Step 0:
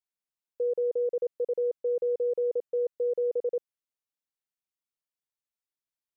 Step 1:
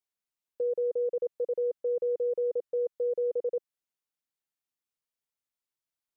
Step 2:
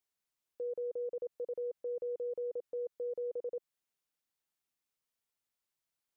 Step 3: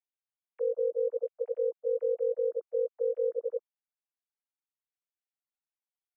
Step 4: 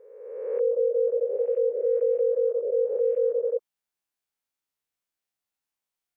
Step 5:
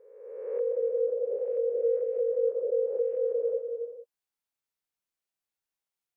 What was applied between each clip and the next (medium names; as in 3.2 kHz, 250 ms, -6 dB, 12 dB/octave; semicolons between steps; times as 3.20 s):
dynamic bell 370 Hz, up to -5 dB, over -44 dBFS, Q 3.3
peak limiter -35.5 dBFS, peak gain reduction 11.5 dB; trim +2 dB
formants replaced by sine waves; trim +8 dB
reverse spectral sustain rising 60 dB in 1.29 s; trim +4 dB
gated-style reverb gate 480 ms flat, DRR 6 dB; trim -4.5 dB